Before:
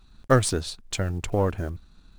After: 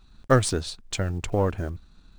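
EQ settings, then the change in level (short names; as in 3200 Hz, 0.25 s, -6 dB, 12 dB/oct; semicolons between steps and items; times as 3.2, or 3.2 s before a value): bell 12000 Hz -14.5 dB 0.22 oct; 0.0 dB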